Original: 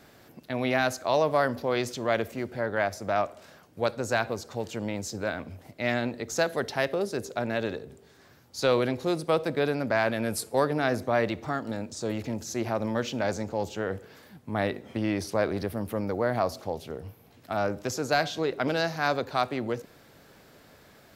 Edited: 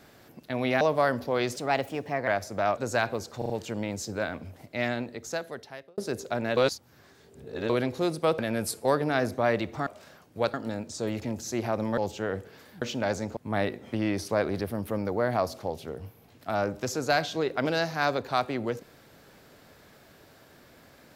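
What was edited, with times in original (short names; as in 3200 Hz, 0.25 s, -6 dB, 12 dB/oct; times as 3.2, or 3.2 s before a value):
0.81–1.17 cut
1.92–2.78 speed 120%
3.28–3.95 move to 11.56
4.55 stutter 0.04 s, 4 plays
5.68–7.03 fade out
7.62–8.75 reverse
9.44–10.08 cut
13–13.55 move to 14.39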